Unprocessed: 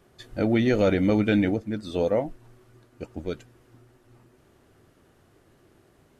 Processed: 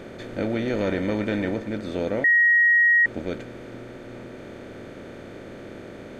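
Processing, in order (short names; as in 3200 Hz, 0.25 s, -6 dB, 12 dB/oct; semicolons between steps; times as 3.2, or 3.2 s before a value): per-bin compression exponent 0.4; 0.76–1.68 small resonant body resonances 990/1800 Hz, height 9 dB; 2.24–3.06 bleep 1890 Hz -6.5 dBFS; gain -7.5 dB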